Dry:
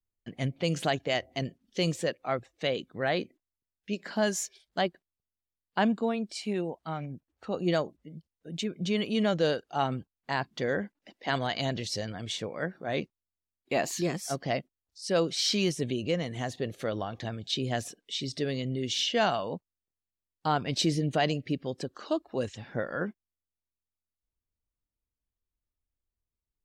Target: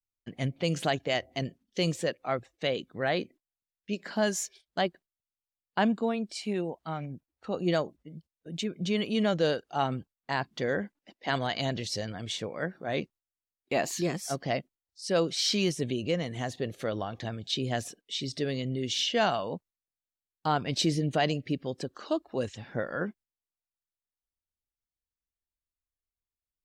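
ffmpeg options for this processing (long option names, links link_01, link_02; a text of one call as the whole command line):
ffmpeg -i in.wav -af "agate=range=-9dB:threshold=-52dB:ratio=16:detection=peak" out.wav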